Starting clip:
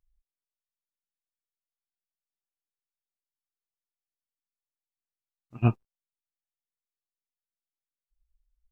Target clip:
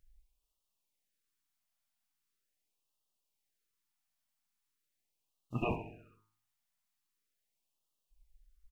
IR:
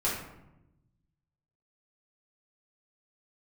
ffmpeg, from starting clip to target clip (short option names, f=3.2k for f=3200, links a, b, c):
-filter_complex "[0:a]afftfilt=real='re*lt(hypot(re,im),0.251)':imag='im*lt(hypot(re,im),0.251)':win_size=1024:overlap=0.75,bandreject=f=53.37:t=h:w=4,bandreject=f=106.74:t=h:w=4,bandreject=f=160.11:t=h:w=4,bandreject=f=213.48:t=h:w=4,bandreject=f=266.85:t=h:w=4,bandreject=f=320.22:t=h:w=4,bandreject=f=373.59:t=h:w=4,bandreject=f=426.96:t=h:w=4,bandreject=f=480.33:t=h:w=4,bandreject=f=533.7:t=h:w=4,bandreject=f=587.07:t=h:w=4,bandreject=f=640.44:t=h:w=4,bandreject=f=693.81:t=h:w=4,bandreject=f=747.18:t=h:w=4,bandreject=f=800.55:t=h:w=4,bandreject=f=853.92:t=h:w=4,bandreject=f=907.29:t=h:w=4,bandreject=f=960.66:t=h:w=4,bandreject=f=1.01403k:t=h:w=4,bandreject=f=1.0674k:t=h:w=4,bandreject=f=1.12077k:t=h:w=4,bandreject=f=1.17414k:t=h:w=4,bandreject=f=1.22751k:t=h:w=4,bandreject=f=1.28088k:t=h:w=4,bandreject=f=1.33425k:t=h:w=4,bandreject=f=1.38762k:t=h:w=4,bandreject=f=1.44099k:t=h:w=4,bandreject=f=1.49436k:t=h:w=4,bandreject=f=1.54773k:t=h:w=4,bandreject=f=1.6011k:t=h:w=4,bandreject=f=1.65447k:t=h:w=4,bandreject=f=1.70784k:t=h:w=4,bandreject=f=1.76121k:t=h:w=4,bandreject=f=1.81458k:t=h:w=4,bandreject=f=1.86795k:t=h:w=4,alimiter=level_in=6.5dB:limit=-24dB:level=0:latency=1:release=16,volume=-6.5dB,asplit=2[a][b];[b]aecho=0:1:66|132|198|264|330|396|462:0.251|0.148|0.0874|0.0516|0.0304|0.018|0.0106[c];[a][c]amix=inputs=2:normalize=0,afftfilt=real='re*(1-between(b*sr/1024,390*pow(1900/390,0.5+0.5*sin(2*PI*0.41*pts/sr))/1.41,390*pow(1900/390,0.5+0.5*sin(2*PI*0.41*pts/sr))*1.41))':imag='im*(1-between(b*sr/1024,390*pow(1900/390,0.5+0.5*sin(2*PI*0.41*pts/sr))/1.41,390*pow(1900/390,0.5+0.5*sin(2*PI*0.41*pts/sr))*1.41))':win_size=1024:overlap=0.75,volume=8.5dB"